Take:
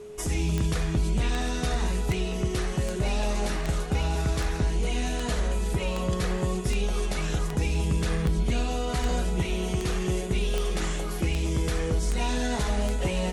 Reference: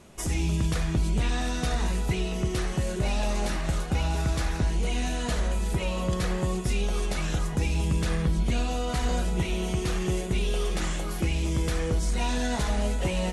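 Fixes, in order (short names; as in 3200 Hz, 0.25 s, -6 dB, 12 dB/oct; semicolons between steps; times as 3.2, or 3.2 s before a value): de-click; notch 420 Hz, Q 30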